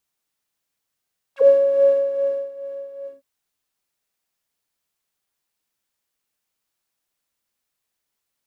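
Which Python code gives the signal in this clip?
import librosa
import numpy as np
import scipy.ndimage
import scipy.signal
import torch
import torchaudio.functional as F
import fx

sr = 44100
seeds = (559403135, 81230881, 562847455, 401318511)

y = fx.sub_patch_tremolo(sr, seeds[0], note=73, wave='triangle', wave2='saw', interval_st=0, detune_cents=16, level2_db=-12, sub_db=-29.5, noise_db=-13.5, kind='bandpass', cutoff_hz=230.0, q=5.1, env_oct=4.0, env_decay_s=0.05, env_sustain_pct=25, attack_ms=113.0, decay_s=1.07, sustain_db=-19.5, release_s=0.15, note_s=1.71, lfo_hz=2.4, tremolo_db=6.5)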